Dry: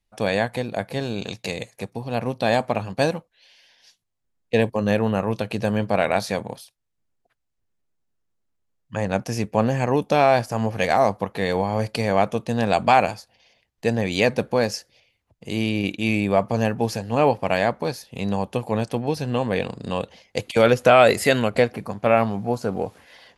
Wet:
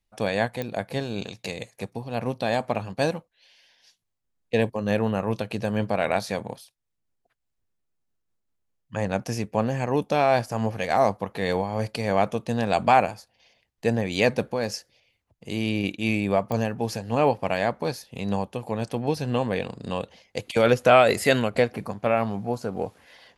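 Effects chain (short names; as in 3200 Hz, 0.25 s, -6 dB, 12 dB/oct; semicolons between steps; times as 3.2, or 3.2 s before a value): 12.77–14.1 dynamic EQ 4300 Hz, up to -5 dB, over -38 dBFS, Q 0.9; pops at 0.62/16.52, -12 dBFS; noise-modulated level, depth 60%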